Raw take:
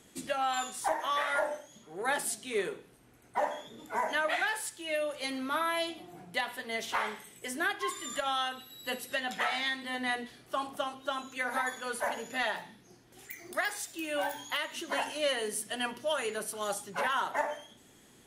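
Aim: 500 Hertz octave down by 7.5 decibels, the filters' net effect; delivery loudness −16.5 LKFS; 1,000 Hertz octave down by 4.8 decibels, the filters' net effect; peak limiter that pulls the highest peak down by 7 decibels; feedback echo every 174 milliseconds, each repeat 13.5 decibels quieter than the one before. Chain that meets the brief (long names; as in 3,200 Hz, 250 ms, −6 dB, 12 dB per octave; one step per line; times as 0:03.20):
parametric band 500 Hz −8.5 dB
parametric band 1,000 Hz −3.5 dB
brickwall limiter −26.5 dBFS
repeating echo 174 ms, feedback 21%, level −13.5 dB
level +21 dB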